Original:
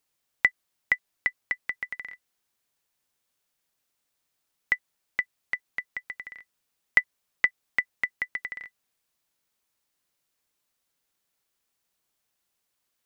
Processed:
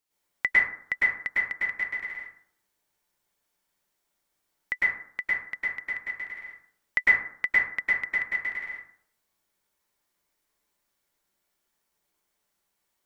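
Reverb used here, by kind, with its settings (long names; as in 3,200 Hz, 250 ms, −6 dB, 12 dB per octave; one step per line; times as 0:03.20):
dense smooth reverb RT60 0.6 s, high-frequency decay 0.4×, pre-delay 95 ms, DRR −8.5 dB
level −6 dB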